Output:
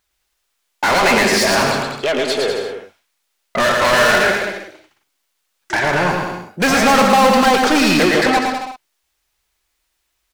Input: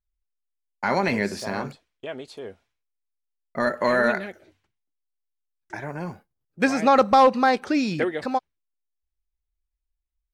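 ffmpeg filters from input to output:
-filter_complex "[0:a]asplit=2[s0][s1];[s1]highpass=f=720:p=1,volume=39.8,asoftclip=type=tanh:threshold=0.376[s2];[s0][s2]amix=inputs=2:normalize=0,lowpass=f=7600:p=1,volume=0.501,aecho=1:1:110|198|268.4|324.7|369.8:0.631|0.398|0.251|0.158|0.1"

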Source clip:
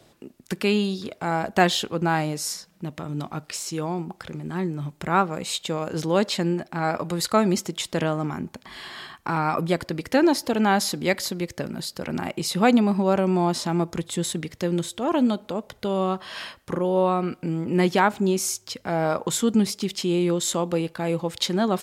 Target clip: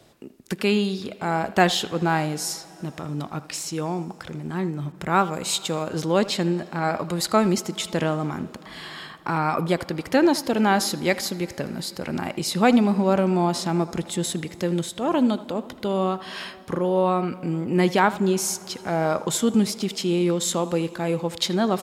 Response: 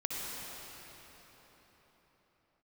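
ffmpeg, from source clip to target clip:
-filter_complex "[0:a]asplit=2[s0][s1];[s1]adelay=80,highpass=300,lowpass=3400,asoftclip=type=hard:threshold=0.224,volume=0.178[s2];[s0][s2]amix=inputs=2:normalize=0,asplit=2[s3][s4];[1:a]atrim=start_sample=2205[s5];[s4][s5]afir=irnorm=-1:irlink=0,volume=0.0794[s6];[s3][s6]amix=inputs=2:normalize=0,asettb=1/sr,asplit=3[s7][s8][s9];[s7]atrim=end=4.924[s10];[s8]atrim=start=4.92:end=5.83,asetpts=PTS-STARTPTS,afade=t=in:d=0.004:c=qsin,afade=t=out:st=0.906:d=0.004:c=qsin,adynamicequalizer=threshold=0.0112:dfrequency=4200:dqfactor=0.7:tfrequency=4200:tqfactor=0.7:attack=5:release=100:ratio=0.375:range=2.5:mode=boostabove:tftype=highshelf[s11];[s9]atrim=start=5.826[s12];[s10][s11]acrossfade=d=0.004:c1=hsin:c2=qsin[s13];[s13][s12]acrossfade=d=0.004:c1=qsin:c2=hsin"

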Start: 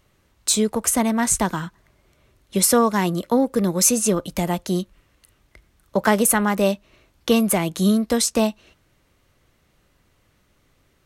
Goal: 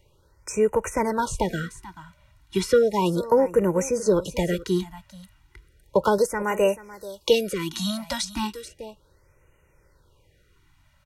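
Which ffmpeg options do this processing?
-filter_complex "[0:a]asettb=1/sr,asplit=3[s0][s1][s2];[s0]atrim=end=6.184[s3];[s1]atrim=start=6.18:end=8.25,asetpts=PTS-STARTPTS,afade=t=in:d=0.004:c=qsin,afade=t=out:st=2.066:d=0.004:c=qsin,bass=f=250:g=-7,treble=f=4000:g=11[s4];[s2]atrim=start=8.246[s5];[s3][s4]acrossfade=d=0.004:c1=hsin:c2=qsin[s6];[s6][s5]acrossfade=d=0.004:c1=qsin:c2=hsin,acrossover=split=390[s7][s8];[s8]acompressor=threshold=0.1:ratio=3[s9];[s7][s9]amix=inputs=2:normalize=0,aecho=1:1:2.1:0.7,aecho=1:1:435:0.141,acrossover=split=5700[s10][s11];[s11]acompressor=threshold=0.0126:ratio=4:attack=1:release=60[s12];[s10][s12]amix=inputs=2:normalize=0,highshelf=f=4500:g=-5.5,afftfilt=real='re*(1-between(b*sr/1024,390*pow(4200/390,0.5+0.5*sin(2*PI*0.34*pts/sr))/1.41,390*pow(4200/390,0.5+0.5*sin(2*PI*0.34*pts/sr))*1.41))':imag='im*(1-between(b*sr/1024,390*pow(4200/390,0.5+0.5*sin(2*PI*0.34*pts/sr))/1.41,390*pow(4200/390,0.5+0.5*sin(2*PI*0.34*pts/sr))*1.41))':win_size=1024:overlap=0.75"

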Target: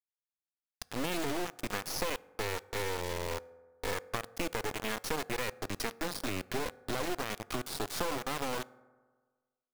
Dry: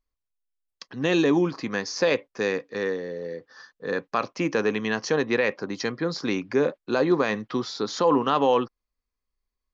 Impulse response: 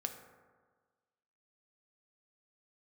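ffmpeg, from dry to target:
-filter_complex "[0:a]acompressor=threshold=0.0316:ratio=12,acrusher=bits=3:dc=4:mix=0:aa=0.000001,asplit=2[s0][s1];[1:a]atrim=start_sample=2205[s2];[s1][s2]afir=irnorm=-1:irlink=0,volume=0.266[s3];[s0][s3]amix=inputs=2:normalize=0"

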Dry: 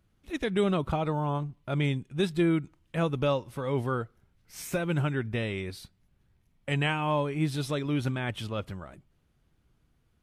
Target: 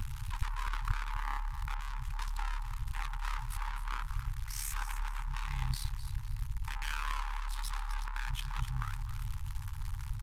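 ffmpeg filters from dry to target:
-filter_complex "[0:a]aeval=exprs='val(0)+0.5*0.00944*sgn(val(0))':c=same,lowshelf=f=480:g=7,aeval=exprs='(tanh(70.8*val(0)+0.7)-tanh(0.7))/70.8':c=same,afftfilt=real='re*(1-between(b*sr/4096,100,830))':imag='im*(1-between(b*sr/4096,100,830))':win_size=4096:overlap=0.75,asplit=2[s0][s1];[s1]aecho=0:1:255|510|765:0.266|0.0772|0.0224[s2];[s0][s2]amix=inputs=2:normalize=0,aresample=32000,aresample=44100,aeval=exprs='val(0)*sin(2*PI*35*n/s)':c=same,asplit=2[s3][s4];[s4]adynamicsmooth=sensitivity=5:basefreq=1500,volume=1.12[s5];[s3][s5]amix=inputs=2:normalize=0,aeval=exprs='0.266*(cos(1*acos(clip(val(0)/0.266,-1,1)))-cos(1*PI/2))+0.0299*(cos(2*acos(clip(val(0)/0.266,-1,1)))-cos(2*PI/2))+0.0668*(cos(4*acos(clip(val(0)/0.266,-1,1)))-cos(4*PI/2))+0.00473*(cos(8*acos(clip(val(0)/0.266,-1,1)))-cos(8*PI/2))':c=same,acompressor=mode=upward:threshold=0.0141:ratio=2.5,highshelf=f=10000:g=3.5,volume=1.5"

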